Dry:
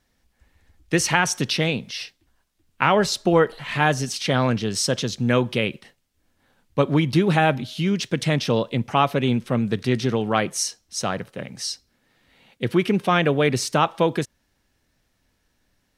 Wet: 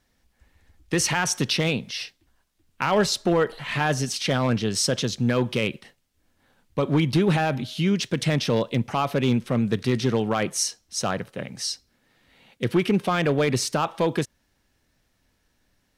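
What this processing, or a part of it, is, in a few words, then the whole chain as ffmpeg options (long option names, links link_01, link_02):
limiter into clipper: -af "alimiter=limit=-10dB:level=0:latency=1:release=39,asoftclip=type=hard:threshold=-13dB"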